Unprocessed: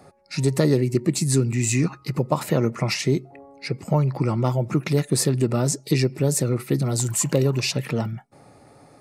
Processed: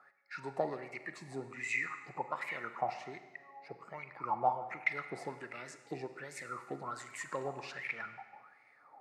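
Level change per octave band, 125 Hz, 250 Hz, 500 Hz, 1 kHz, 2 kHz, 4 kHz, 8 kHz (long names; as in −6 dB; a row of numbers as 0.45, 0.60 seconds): −32.5, −26.0, −17.5, −4.0, −4.5, −23.5, −27.5 decibels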